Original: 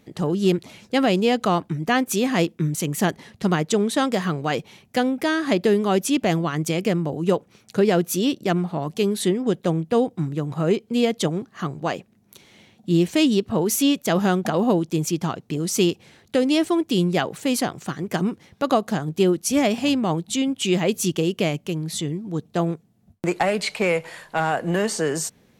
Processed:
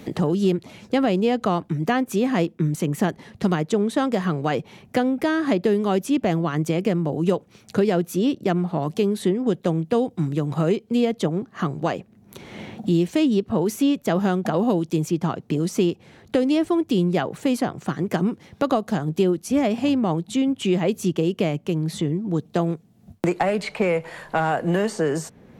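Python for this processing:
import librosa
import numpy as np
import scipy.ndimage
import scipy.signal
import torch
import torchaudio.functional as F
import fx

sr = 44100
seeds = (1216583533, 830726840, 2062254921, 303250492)

y = fx.high_shelf(x, sr, hz=2100.0, db=-9.0)
y = fx.band_squash(y, sr, depth_pct=70)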